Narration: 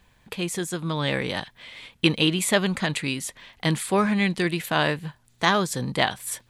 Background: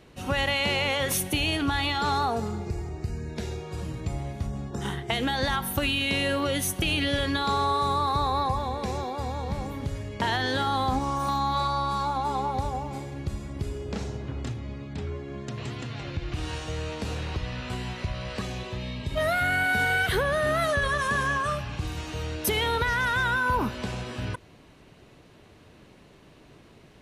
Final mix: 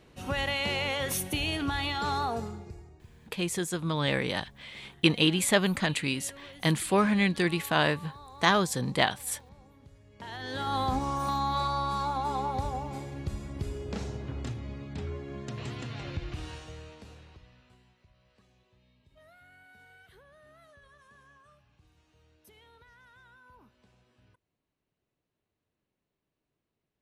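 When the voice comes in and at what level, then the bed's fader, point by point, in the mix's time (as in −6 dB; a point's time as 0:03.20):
3.00 s, −2.5 dB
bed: 0:02.38 −4.5 dB
0:03.11 −23 dB
0:10.01 −23 dB
0:10.76 −3 dB
0:16.16 −3 dB
0:18.00 −32.5 dB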